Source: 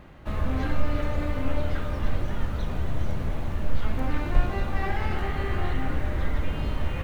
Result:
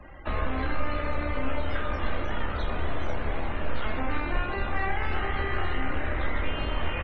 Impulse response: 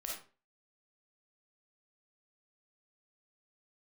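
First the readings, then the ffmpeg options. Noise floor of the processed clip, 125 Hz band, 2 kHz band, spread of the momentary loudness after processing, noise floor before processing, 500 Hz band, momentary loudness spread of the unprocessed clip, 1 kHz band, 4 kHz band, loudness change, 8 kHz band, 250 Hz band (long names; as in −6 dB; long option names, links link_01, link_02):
−32 dBFS, −5.0 dB, +4.5 dB, 3 LU, −31 dBFS, +1.0 dB, 4 LU, +3.0 dB, +3.0 dB, −1.0 dB, can't be measured, −2.5 dB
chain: -filter_complex "[0:a]highshelf=frequency=2500:gain=11.5,aresample=32000,aresample=44100,tremolo=f=62:d=0.4,acrossover=split=99|220[link_01][link_02][link_03];[link_01]acompressor=threshold=-34dB:ratio=4[link_04];[link_02]acompressor=threshold=-41dB:ratio=4[link_05];[link_03]acompressor=threshold=-37dB:ratio=4[link_06];[link_04][link_05][link_06]amix=inputs=3:normalize=0,equalizer=frequency=140:width_type=o:width=1.6:gain=-11,asplit=2[link_07][link_08];[link_08]adelay=26,volume=-7.5dB[link_09];[link_07][link_09]amix=inputs=2:normalize=0,acrossover=split=2600[link_10][link_11];[link_11]acompressor=threshold=-52dB:ratio=4:attack=1:release=60[link_12];[link_10][link_12]amix=inputs=2:normalize=0,afftdn=noise_reduction=35:noise_floor=-50,volume=8dB"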